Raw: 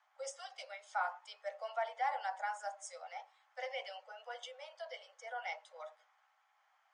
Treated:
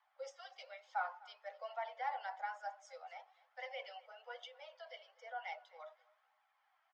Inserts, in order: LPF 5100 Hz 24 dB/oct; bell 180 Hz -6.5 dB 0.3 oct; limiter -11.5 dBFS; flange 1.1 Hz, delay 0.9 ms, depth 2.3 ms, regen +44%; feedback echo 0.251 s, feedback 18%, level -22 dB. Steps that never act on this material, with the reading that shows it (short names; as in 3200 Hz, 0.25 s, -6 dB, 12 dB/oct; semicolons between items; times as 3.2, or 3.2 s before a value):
bell 180 Hz: input band starts at 430 Hz; limiter -11.5 dBFS: input peak -24.0 dBFS